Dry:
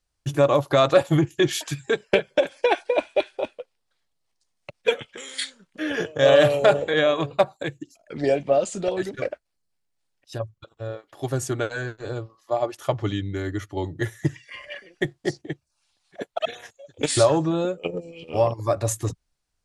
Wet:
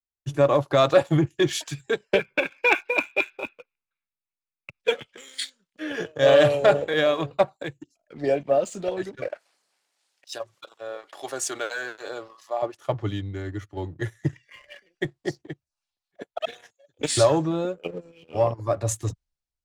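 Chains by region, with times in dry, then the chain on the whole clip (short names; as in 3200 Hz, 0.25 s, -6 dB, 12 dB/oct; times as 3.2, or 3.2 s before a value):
2.19–4.8 synth low-pass 2300 Hz, resonance Q 2.8 + comb 0.8 ms, depth 59%
9.27–12.62 HPF 560 Hz + fast leveller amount 50%
whole clip: LPF 9700 Hz; sample leveller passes 1; three-band expander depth 40%; gain -6 dB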